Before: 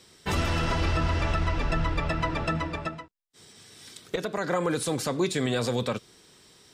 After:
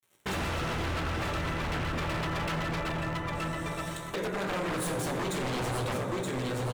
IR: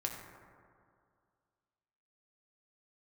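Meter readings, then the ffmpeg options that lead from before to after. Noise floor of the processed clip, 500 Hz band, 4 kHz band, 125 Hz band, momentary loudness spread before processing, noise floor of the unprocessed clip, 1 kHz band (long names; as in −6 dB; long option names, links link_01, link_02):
−40 dBFS, −3.5 dB, −2.5 dB, −3.5 dB, 10 LU, −57 dBFS, −1.5 dB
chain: -filter_complex "[0:a]aecho=1:1:924|1848|2772:0.422|0.0843|0.0169,acompressor=threshold=-37dB:ratio=2.5,agate=range=-33dB:threshold=-53dB:ratio=3:detection=peak,aeval=exprs='sgn(val(0))*max(abs(val(0))-0.00251,0)':channel_layout=same,highpass=frequency=52:poles=1,equalizer=frequency=4900:width_type=o:width=0.38:gain=-12.5,asplit=2[link_01][link_02];[link_02]adelay=16,volume=-10.5dB[link_03];[link_01][link_03]amix=inputs=2:normalize=0[link_04];[1:a]atrim=start_sample=2205[link_05];[link_04][link_05]afir=irnorm=-1:irlink=0,aeval=exprs='0.02*(abs(mod(val(0)/0.02+3,4)-2)-1)':channel_layout=same,volume=7.5dB"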